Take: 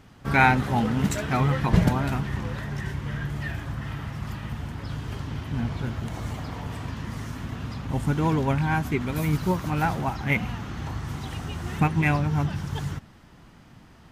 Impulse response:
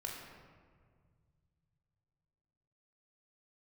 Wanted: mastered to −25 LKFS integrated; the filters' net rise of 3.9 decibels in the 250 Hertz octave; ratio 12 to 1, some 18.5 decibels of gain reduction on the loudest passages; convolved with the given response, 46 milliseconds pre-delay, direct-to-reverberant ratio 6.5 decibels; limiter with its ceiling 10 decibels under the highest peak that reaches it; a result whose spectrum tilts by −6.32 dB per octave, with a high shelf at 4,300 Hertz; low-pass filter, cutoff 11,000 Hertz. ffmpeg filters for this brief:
-filter_complex "[0:a]lowpass=11000,equalizer=frequency=250:width_type=o:gain=5.5,highshelf=frequency=4300:gain=-7.5,acompressor=threshold=-31dB:ratio=12,alimiter=level_in=7dB:limit=-24dB:level=0:latency=1,volume=-7dB,asplit=2[link_01][link_02];[1:a]atrim=start_sample=2205,adelay=46[link_03];[link_02][link_03]afir=irnorm=-1:irlink=0,volume=-6dB[link_04];[link_01][link_04]amix=inputs=2:normalize=0,volume=14dB"

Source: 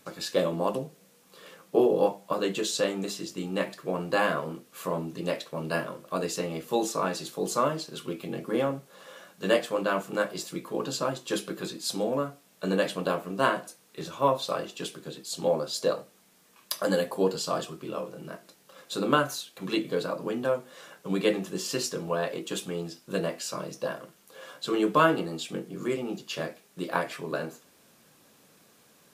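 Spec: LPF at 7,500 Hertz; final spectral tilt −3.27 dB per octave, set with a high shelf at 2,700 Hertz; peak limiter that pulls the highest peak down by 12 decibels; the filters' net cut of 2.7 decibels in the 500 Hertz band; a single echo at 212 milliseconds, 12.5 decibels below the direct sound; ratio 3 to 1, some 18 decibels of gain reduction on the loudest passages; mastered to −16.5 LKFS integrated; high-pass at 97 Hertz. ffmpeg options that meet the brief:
ffmpeg -i in.wav -af "highpass=97,lowpass=7500,equalizer=frequency=500:width_type=o:gain=-3.5,highshelf=frequency=2700:gain=7.5,acompressor=threshold=-43dB:ratio=3,alimiter=level_in=7dB:limit=-24dB:level=0:latency=1,volume=-7dB,aecho=1:1:212:0.237,volume=27dB" out.wav

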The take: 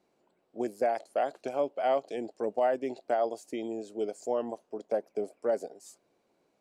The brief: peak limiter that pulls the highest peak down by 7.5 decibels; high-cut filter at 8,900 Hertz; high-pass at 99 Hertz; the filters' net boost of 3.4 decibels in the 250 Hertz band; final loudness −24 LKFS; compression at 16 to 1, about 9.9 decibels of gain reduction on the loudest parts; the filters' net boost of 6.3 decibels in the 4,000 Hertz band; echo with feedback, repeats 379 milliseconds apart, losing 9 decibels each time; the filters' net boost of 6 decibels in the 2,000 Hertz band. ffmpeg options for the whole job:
ffmpeg -i in.wav -af "highpass=99,lowpass=8900,equalizer=frequency=250:width_type=o:gain=4.5,equalizer=frequency=2000:width_type=o:gain=6.5,equalizer=frequency=4000:width_type=o:gain=6,acompressor=threshold=-31dB:ratio=16,alimiter=level_in=4.5dB:limit=-24dB:level=0:latency=1,volume=-4.5dB,aecho=1:1:379|758|1137|1516:0.355|0.124|0.0435|0.0152,volume=15.5dB" out.wav

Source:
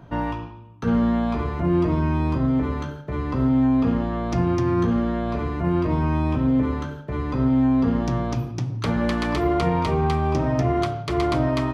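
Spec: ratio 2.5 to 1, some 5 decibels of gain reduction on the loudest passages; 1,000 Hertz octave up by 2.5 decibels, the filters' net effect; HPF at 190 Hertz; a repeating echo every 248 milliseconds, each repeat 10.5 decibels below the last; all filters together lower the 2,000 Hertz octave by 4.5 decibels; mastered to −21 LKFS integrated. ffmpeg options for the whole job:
ffmpeg -i in.wav -af "highpass=190,equalizer=frequency=1000:width_type=o:gain=5,equalizer=frequency=2000:width_type=o:gain=-8,acompressor=threshold=-25dB:ratio=2.5,aecho=1:1:248|496|744:0.299|0.0896|0.0269,volume=6.5dB" out.wav

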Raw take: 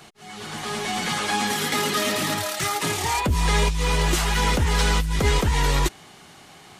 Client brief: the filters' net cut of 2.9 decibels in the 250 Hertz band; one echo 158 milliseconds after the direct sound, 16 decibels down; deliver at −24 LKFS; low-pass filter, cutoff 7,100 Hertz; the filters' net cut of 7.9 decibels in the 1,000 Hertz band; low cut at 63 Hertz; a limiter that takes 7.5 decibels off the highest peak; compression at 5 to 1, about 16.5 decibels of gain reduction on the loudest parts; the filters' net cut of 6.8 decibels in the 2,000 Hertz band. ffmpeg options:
ffmpeg -i in.wav -af "highpass=63,lowpass=7100,equalizer=frequency=250:width_type=o:gain=-4,equalizer=frequency=1000:width_type=o:gain=-8,equalizer=frequency=2000:width_type=o:gain=-6,acompressor=threshold=-39dB:ratio=5,alimiter=level_in=10dB:limit=-24dB:level=0:latency=1,volume=-10dB,aecho=1:1:158:0.158,volume=19dB" out.wav

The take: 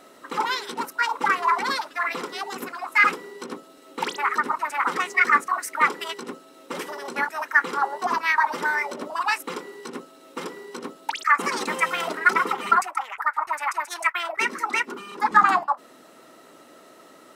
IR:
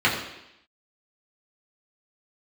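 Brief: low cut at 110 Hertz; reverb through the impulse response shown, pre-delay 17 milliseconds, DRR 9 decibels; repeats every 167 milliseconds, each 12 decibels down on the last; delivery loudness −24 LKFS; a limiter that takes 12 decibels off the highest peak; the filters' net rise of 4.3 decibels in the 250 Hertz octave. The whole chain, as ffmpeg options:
-filter_complex "[0:a]highpass=110,equalizer=frequency=250:width_type=o:gain=5.5,alimiter=limit=-15.5dB:level=0:latency=1,aecho=1:1:167|334|501:0.251|0.0628|0.0157,asplit=2[link_01][link_02];[1:a]atrim=start_sample=2205,adelay=17[link_03];[link_02][link_03]afir=irnorm=-1:irlink=0,volume=-27.5dB[link_04];[link_01][link_04]amix=inputs=2:normalize=0,volume=2.5dB"

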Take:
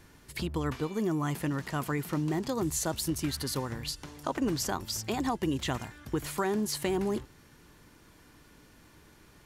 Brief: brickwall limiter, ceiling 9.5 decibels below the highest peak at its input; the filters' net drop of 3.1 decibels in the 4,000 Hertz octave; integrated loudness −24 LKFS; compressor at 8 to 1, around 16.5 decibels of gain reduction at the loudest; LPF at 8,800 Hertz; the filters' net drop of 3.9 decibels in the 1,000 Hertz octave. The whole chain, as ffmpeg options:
ffmpeg -i in.wav -af "lowpass=8800,equalizer=frequency=1000:width_type=o:gain=-5,equalizer=frequency=4000:width_type=o:gain=-3.5,acompressor=threshold=-44dB:ratio=8,volume=26dB,alimiter=limit=-13dB:level=0:latency=1" out.wav

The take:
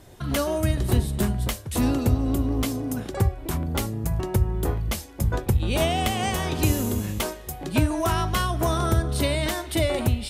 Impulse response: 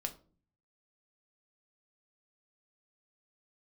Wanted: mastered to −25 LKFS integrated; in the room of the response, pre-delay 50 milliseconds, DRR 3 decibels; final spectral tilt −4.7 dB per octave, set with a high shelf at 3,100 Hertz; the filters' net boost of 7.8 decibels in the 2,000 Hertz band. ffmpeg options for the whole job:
-filter_complex "[0:a]equalizer=frequency=2000:width_type=o:gain=8.5,highshelf=frequency=3100:gain=3,asplit=2[link_01][link_02];[1:a]atrim=start_sample=2205,adelay=50[link_03];[link_02][link_03]afir=irnorm=-1:irlink=0,volume=-2.5dB[link_04];[link_01][link_04]amix=inputs=2:normalize=0,volume=-3.5dB"

